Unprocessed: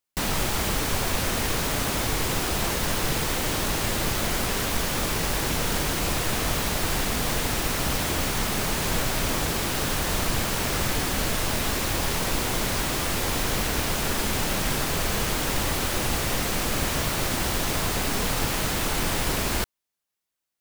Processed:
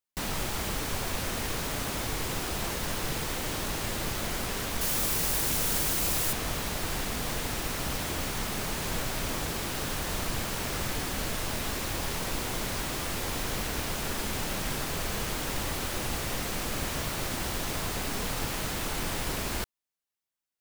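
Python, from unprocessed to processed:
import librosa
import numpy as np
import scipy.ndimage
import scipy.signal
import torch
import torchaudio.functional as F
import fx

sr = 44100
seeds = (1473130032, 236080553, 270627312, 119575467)

y = fx.high_shelf(x, sr, hz=6300.0, db=11.5, at=(4.81, 6.33))
y = F.gain(torch.from_numpy(y), -6.5).numpy()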